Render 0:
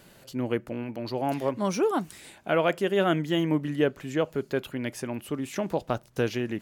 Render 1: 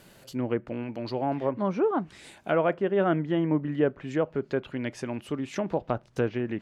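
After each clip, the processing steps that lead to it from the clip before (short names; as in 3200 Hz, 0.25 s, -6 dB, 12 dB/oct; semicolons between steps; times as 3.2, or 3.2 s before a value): treble ducked by the level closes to 1600 Hz, closed at -23.5 dBFS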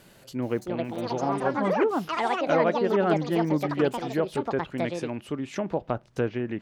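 echoes that change speed 0.422 s, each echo +6 st, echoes 2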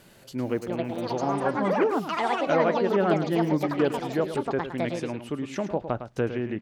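echo 0.107 s -10.5 dB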